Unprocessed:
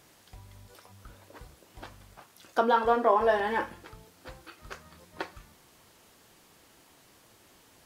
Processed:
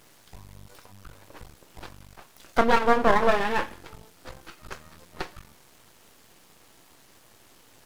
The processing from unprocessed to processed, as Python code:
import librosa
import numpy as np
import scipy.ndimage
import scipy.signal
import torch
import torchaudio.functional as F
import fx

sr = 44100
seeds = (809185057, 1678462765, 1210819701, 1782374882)

y = np.maximum(x, 0.0)
y = y * 10.0 ** (7.0 / 20.0)